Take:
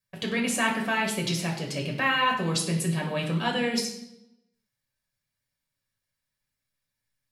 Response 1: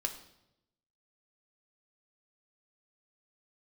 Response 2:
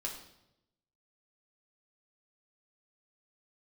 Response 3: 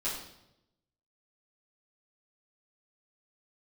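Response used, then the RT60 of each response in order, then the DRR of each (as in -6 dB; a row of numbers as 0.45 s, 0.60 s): 2; 0.85 s, 0.85 s, 0.85 s; 5.0 dB, -0.5 dB, -10.5 dB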